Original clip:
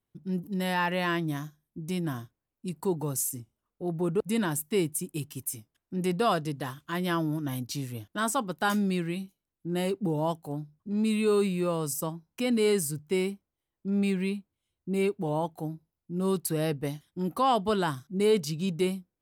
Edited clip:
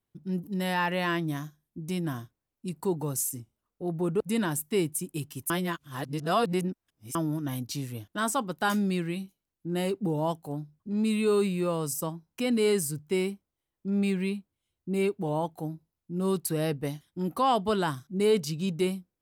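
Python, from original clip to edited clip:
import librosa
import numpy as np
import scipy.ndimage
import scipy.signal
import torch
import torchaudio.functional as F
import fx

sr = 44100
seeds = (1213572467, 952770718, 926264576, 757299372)

y = fx.edit(x, sr, fx.reverse_span(start_s=5.5, length_s=1.65), tone=tone)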